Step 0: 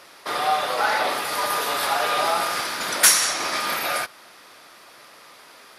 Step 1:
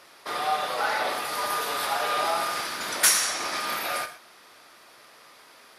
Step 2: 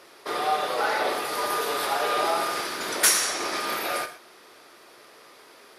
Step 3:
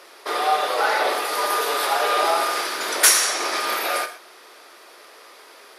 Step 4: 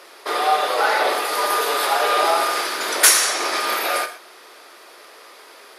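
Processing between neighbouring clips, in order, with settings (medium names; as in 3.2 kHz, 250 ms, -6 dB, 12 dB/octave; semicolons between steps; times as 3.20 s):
gated-style reverb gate 150 ms flat, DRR 9.5 dB; trim -5 dB
peaking EQ 390 Hz +9 dB 0.83 oct
high-pass 390 Hz 12 dB/octave; trim +5 dB
band-stop 5.7 kHz, Q 29; trim +2 dB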